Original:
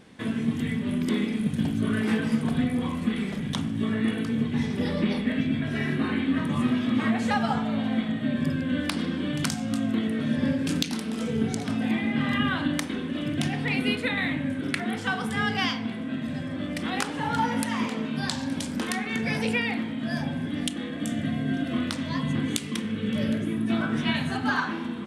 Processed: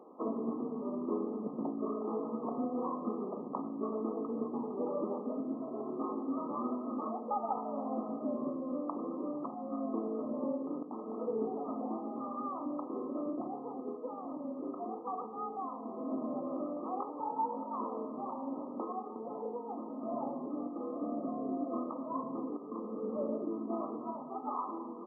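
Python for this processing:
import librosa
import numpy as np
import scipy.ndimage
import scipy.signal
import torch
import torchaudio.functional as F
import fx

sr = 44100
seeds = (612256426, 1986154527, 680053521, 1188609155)

y = scipy.signal.sosfilt(scipy.signal.butter(4, 330.0, 'highpass', fs=sr, output='sos'), x)
y = fx.rider(y, sr, range_db=10, speed_s=0.5)
y = fx.brickwall_lowpass(y, sr, high_hz=1300.0)
y = y * librosa.db_to_amplitude(-3.0)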